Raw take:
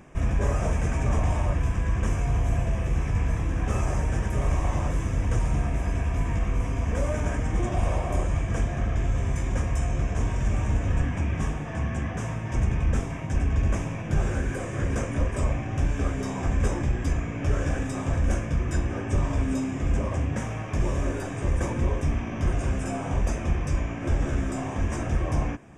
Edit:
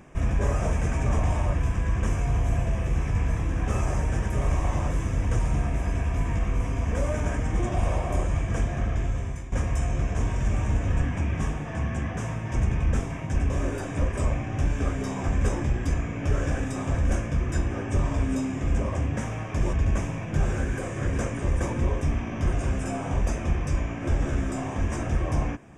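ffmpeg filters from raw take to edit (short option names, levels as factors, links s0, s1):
-filter_complex "[0:a]asplit=6[s0][s1][s2][s3][s4][s5];[s0]atrim=end=9.52,asetpts=PTS-STARTPTS,afade=t=out:st=8.73:d=0.79:c=qsin:silence=0.199526[s6];[s1]atrim=start=9.52:end=13.502,asetpts=PTS-STARTPTS,afade=t=in:d=0.004:c=hsin:silence=0.199526[s7];[s2]atrim=start=20.918:end=21.392[s8];[s3]atrim=start=15.158:end=20.922[s9];[s4]atrim=start=13.498:end=15.162[s10];[s5]atrim=start=21.388[s11];[s6][s7]concat=n=2:v=0:a=1[s12];[s12][s8]acrossfade=d=0.004:c1=hsin:c2=hsin[s13];[s13][s9]acrossfade=d=0.004:c1=hsin:c2=hsin[s14];[s14][s10]acrossfade=d=0.004:c1=hsin:c2=hsin[s15];[s15][s11]acrossfade=d=0.004:c1=hsin:c2=hsin"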